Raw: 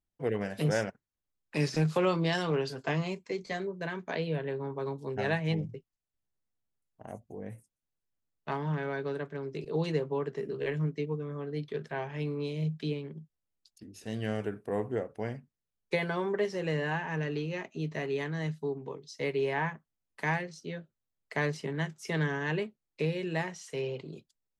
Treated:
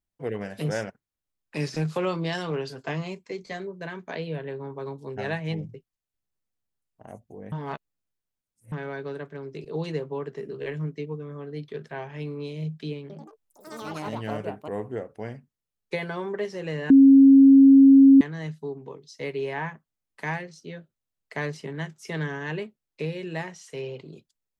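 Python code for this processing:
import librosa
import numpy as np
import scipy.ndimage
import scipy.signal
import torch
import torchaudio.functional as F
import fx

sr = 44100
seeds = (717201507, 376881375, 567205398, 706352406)

y = fx.echo_pitch(x, sr, ms=88, semitones=6, count=3, db_per_echo=-3.0, at=(13.01, 15.25))
y = fx.edit(y, sr, fx.reverse_span(start_s=7.52, length_s=1.2),
    fx.bleep(start_s=16.9, length_s=1.31, hz=272.0, db=-9.0), tone=tone)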